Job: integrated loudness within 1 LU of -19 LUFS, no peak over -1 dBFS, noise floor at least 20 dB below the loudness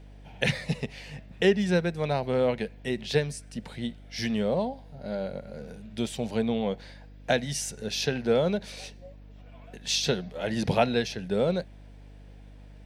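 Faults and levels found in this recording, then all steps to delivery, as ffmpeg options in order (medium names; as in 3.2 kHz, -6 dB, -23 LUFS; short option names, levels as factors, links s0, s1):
hum 50 Hz; highest harmonic 300 Hz; hum level -45 dBFS; loudness -28.5 LUFS; peak level -8.0 dBFS; loudness target -19.0 LUFS
-> -af "bandreject=f=50:t=h:w=4,bandreject=f=100:t=h:w=4,bandreject=f=150:t=h:w=4,bandreject=f=200:t=h:w=4,bandreject=f=250:t=h:w=4,bandreject=f=300:t=h:w=4"
-af "volume=2.99,alimiter=limit=0.891:level=0:latency=1"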